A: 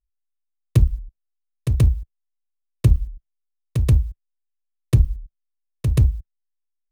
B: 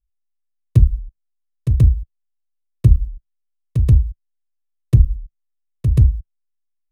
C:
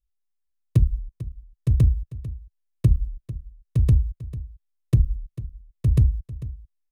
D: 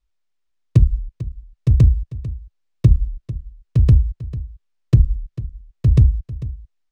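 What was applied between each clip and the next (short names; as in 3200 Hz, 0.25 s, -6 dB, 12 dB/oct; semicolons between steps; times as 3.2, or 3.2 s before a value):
low shelf 380 Hz +11.5 dB; gain -7 dB
compressor 3:1, threshold -11 dBFS, peak gain reduction 5.5 dB; echo 0.446 s -15.5 dB; gain -2.5 dB
decimation joined by straight lines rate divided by 3×; gain +5.5 dB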